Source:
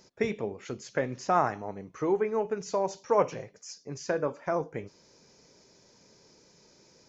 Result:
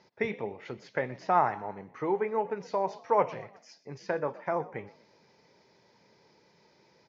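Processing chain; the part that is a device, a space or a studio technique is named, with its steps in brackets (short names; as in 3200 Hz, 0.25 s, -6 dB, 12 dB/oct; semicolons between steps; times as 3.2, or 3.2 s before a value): frequency-shifting delay pedal into a guitar cabinet (frequency-shifting echo 0.122 s, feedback 42%, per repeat +51 Hz, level -20 dB; speaker cabinet 88–4500 Hz, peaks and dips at 270 Hz -4 dB, 870 Hz +7 dB, 2000 Hz +6 dB); gain -2.5 dB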